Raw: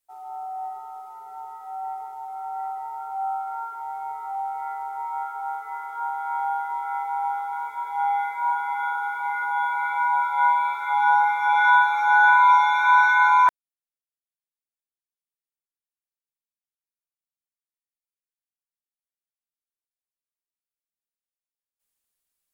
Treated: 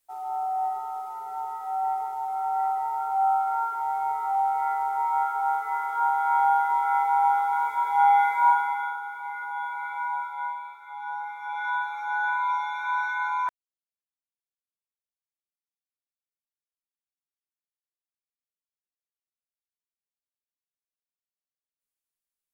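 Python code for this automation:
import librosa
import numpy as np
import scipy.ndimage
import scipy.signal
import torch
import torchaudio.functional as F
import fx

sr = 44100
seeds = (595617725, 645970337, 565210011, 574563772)

y = fx.gain(x, sr, db=fx.line((8.48, 5.0), (9.03, -7.5), (10.13, -7.5), (10.8, -17.5), (11.86, -11.0)))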